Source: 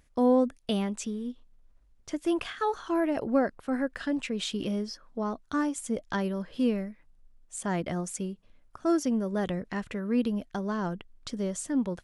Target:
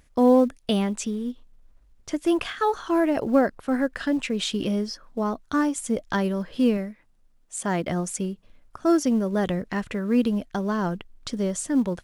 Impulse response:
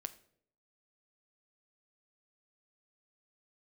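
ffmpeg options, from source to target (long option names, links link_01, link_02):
-filter_complex "[0:a]asettb=1/sr,asplit=3[link_01][link_02][link_03];[link_01]atrim=end=6.774[link_04];[link_02]atrim=start=6.77:end=7.88,asetpts=PTS-STARTPTS,afade=type=in:duration=0.004:curve=qsin,afade=type=out:start_time=1.106:duration=0.004:curve=qsin,lowshelf=frequency=92:gain=-10[link_05];[link_03]atrim=start=7.876[link_06];[link_04][link_05]acrossfade=duration=0.004:curve1=hsin:curve2=qsin[link_07];[link_07][link_06]acrossfade=duration=0.004:curve1=qsin:curve2=hsin,asplit=2[link_08][link_09];[link_09]acrusher=bits=5:mode=log:mix=0:aa=0.000001,volume=-12dB[link_10];[link_08][link_10]amix=inputs=2:normalize=0,volume=3.5dB"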